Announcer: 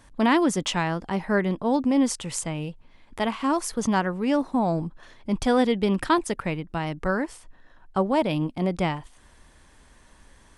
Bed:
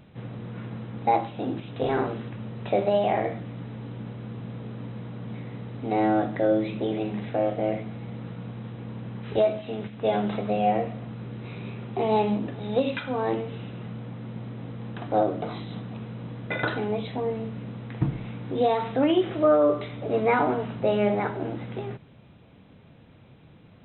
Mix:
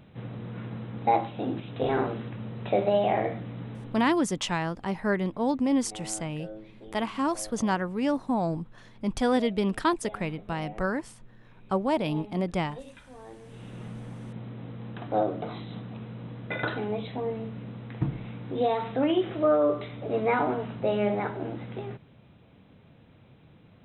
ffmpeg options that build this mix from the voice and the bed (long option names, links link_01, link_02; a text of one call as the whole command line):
ffmpeg -i stem1.wav -i stem2.wav -filter_complex "[0:a]adelay=3750,volume=-3.5dB[link_01];[1:a]volume=16dB,afade=type=out:start_time=3.7:duration=0.52:silence=0.112202,afade=type=in:start_time=13.39:duration=0.41:silence=0.141254[link_02];[link_01][link_02]amix=inputs=2:normalize=0" out.wav